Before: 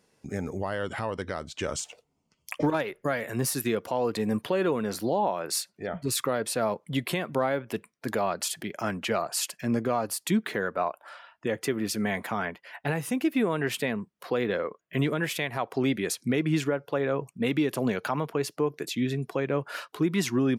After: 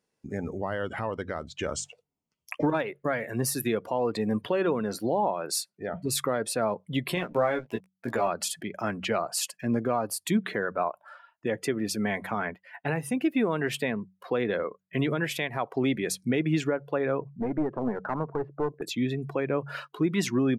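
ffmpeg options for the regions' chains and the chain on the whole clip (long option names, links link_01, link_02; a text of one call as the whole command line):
ffmpeg -i in.wav -filter_complex "[0:a]asettb=1/sr,asplit=3[link_01][link_02][link_03];[link_01]atrim=end=7.154[link_04];[link_02]atrim=start=7.15:end=8.28,asetpts=PTS-STARTPTS,afade=type=in:duration=0.004:curve=qsin,afade=type=out:start_time=1.126:duration=0.004:curve=qsin,highpass=frequency=76:poles=1,aeval=exprs='sgn(val(0))*max(abs(val(0))-0.00531,0)':channel_layout=same,asplit=2[link_05][link_06];[link_06]adelay=17,volume=-3.5dB[link_07];[link_05][link_07]amix=inputs=2:normalize=0,atrim=end_sample=49833[link_08];[link_03]atrim=start=8.276[link_09];[link_04][link_08]acrossfade=duration=0.004:curve1=hsin:curve2=qsin[link_10];[link_10][link_09]acrossfade=duration=0.004:curve1=qsin:curve2=hsin,asettb=1/sr,asplit=3[link_11][link_12][link_13];[link_11]atrim=end=17.214[link_14];[link_12]atrim=start=17.21:end=18.82,asetpts=PTS-STARTPTS,afade=type=in:duration=0.004:curve=qsin,afade=type=out:start_time=1.606:duration=0.004:curve=qsin,lowpass=frequency=1500:width=0.5412,lowpass=frequency=1500:width=1.3066,aeval=exprs='clip(val(0),-1,0.0398)':channel_layout=same[link_15];[link_13]atrim=start=18.816[link_16];[link_14][link_15]acrossfade=duration=0.004:curve1=hsin:curve2=qsin[link_17];[link_17][link_16]acrossfade=duration=0.004:curve1=qsin:curve2=hsin,bandreject=frequency=47.01:width_type=h:width=4,bandreject=frequency=94.02:width_type=h:width=4,bandreject=frequency=141.03:width_type=h:width=4,bandreject=frequency=188.04:width_type=h:width=4,afftdn=noise_reduction=13:noise_floor=-42" out.wav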